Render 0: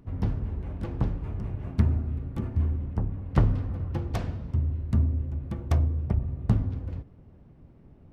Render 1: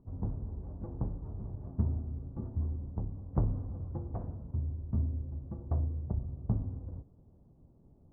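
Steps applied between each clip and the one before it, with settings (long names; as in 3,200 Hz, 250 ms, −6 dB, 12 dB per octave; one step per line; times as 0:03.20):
low-pass filter 1,000 Hz 24 dB per octave
level −8 dB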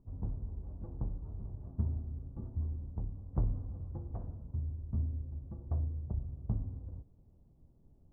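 low-shelf EQ 61 Hz +11 dB
level −6.5 dB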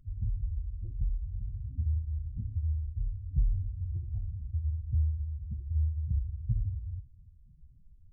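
expanding power law on the bin magnitudes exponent 2.8
in parallel at −1 dB: brickwall limiter −33 dBFS, peak gain reduction 10 dB
on the sum: flanger 1.8 Hz, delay 0.6 ms, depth 9.6 ms, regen −62%
level +6 dB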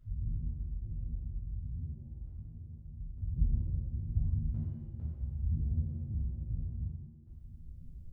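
downward compressor 6 to 1, threshold −36 dBFS, peak gain reduction 13.5 dB
sample-and-hold tremolo 2.2 Hz, depth 95%
reverb with rising layers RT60 1 s, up +7 semitones, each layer −8 dB, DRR −7.5 dB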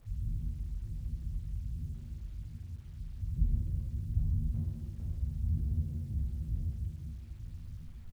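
single-tap delay 894 ms −8.5 dB
bit reduction 11 bits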